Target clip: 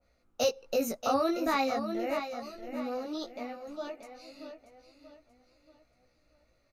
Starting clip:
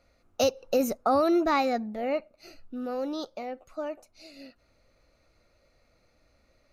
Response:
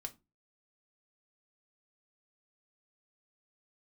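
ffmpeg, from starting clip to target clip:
-af "aecho=1:1:633|1266|1899|2532:0.355|0.138|0.054|0.021,flanger=delay=16:depth=2.7:speed=0.34,adynamicequalizer=threshold=0.00631:dfrequency=1500:dqfactor=0.7:tfrequency=1500:tqfactor=0.7:attack=5:release=100:ratio=0.375:range=2:mode=boostabove:tftype=highshelf,volume=0.794"

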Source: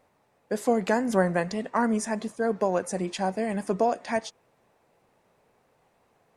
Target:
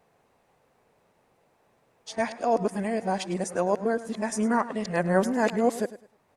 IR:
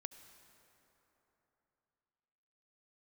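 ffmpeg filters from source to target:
-af "areverse,aecho=1:1:104|208|312:0.168|0.042|0.0105"

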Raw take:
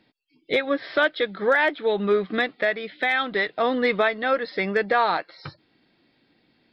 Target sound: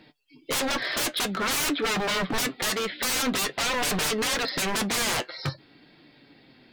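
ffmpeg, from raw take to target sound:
-af "acontrast=82,aeval=exprs='0.0708*(abs(mod(val(0)/0.0708+3,4)-2)-1)':c=same,flanger=delay=6.5:depth=2:regen=60:speed=0.5:shape=triangular,volume=2"

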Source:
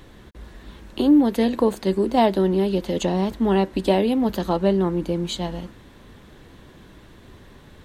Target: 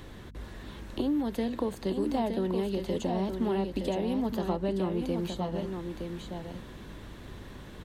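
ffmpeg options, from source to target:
-filter_complex "[0:a]acrossover=split=190|1000[s0][s1][s2];[s0]acompressor=threshold=0.01:ratio=4[s3];[s1]acompressor=threshold=0.0251:ratio=4[s4];[s2]acompressor=threshold=0.00501:ratio=4[s5];[s3][s4][s5]amix=inputs=3:normalize=0,aecho=1:1:917:0.501,aeval=exprs='val(0)+0.00398*(sin(2*PI*50*n/s)+sin(2*PI*2*50*n/s)/2+sin(2*PI*3*50*n/s)/3+sin(2*PI*4*50*n/s)/4+sin(2*PI*5*50*n/s)/5)':c=same"

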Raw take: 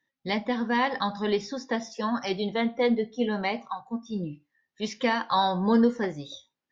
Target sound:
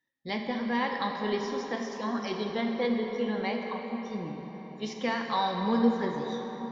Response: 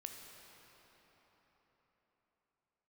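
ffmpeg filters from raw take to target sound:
-filter_complex "[1:a]atrim=start_sample=2205,asetrate=42336,aresample=44100[s0];[0:a][s0]afir=irnorm=-1:irlink=0"

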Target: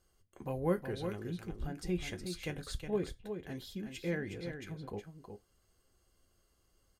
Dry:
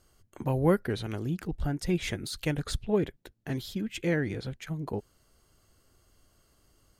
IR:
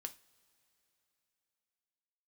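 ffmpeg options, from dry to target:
-filter_complex "[0:a]aecho=1:1:365:0.422[s0];[1:a]atrim=start_sample=2205,afade=t=out:st=0.25:d=0.01,atrim=end_sample=11466,asetrate=83790,aresample=44100[s1];[s0][s1]afir=irnorm=-1:irlink=0,volume=1.12"

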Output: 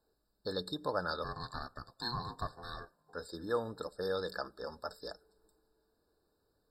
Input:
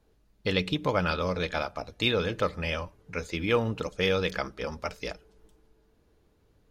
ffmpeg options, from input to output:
-filter_complex "[0:a]bass=f=250:g=-10,treble=f=4000:g=7,asplit=3[s0][s1][s2];[s0]afade=t=out:st=1.23:d=0.02[s3];[s1]aeval=exprs='val(0)*sin(2*PI*600*n/s)':c=same,afade=t=in:st=1.23:d=0.02,afade=t=out:st=3.13:d=0.02[s4];[s2]afade=t=in:st=3.13:d=0.02[s5];[s3][s4][s5]amix=inputs=3:normalize=0,afftfilt=real='re*eq(mod(floor(b*sr/1024/1800),2),0)':imag='im*eq(mod(floor(b*sr/1024/1800),2),0)':win_size=1024:overlap=0.75,volume=0.447"

